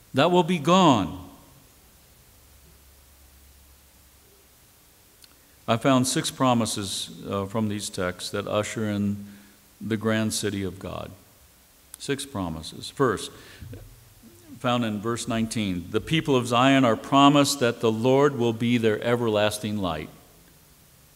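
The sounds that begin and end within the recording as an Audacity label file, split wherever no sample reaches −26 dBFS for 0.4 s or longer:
5.680000	9.140000	sound
9.850000	11.060000	sound
11.940000	13.260000	sound
14.640000	20.050000	sound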